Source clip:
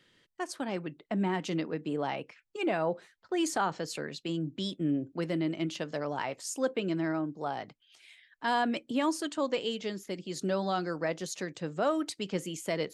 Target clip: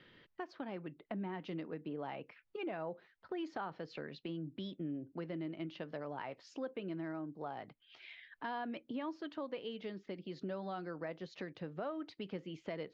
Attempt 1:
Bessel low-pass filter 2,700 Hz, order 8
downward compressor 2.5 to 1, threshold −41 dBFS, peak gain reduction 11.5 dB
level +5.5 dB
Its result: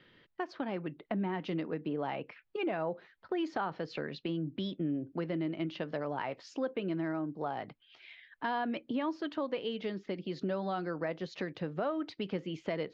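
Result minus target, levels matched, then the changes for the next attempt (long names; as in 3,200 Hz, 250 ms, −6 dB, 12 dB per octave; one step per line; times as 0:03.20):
downward compressor: peak gain reduction −7 dB
change: downward compressor 2.5 to 1, threshold −53 dBFS, peak gain reduction 18.5 dB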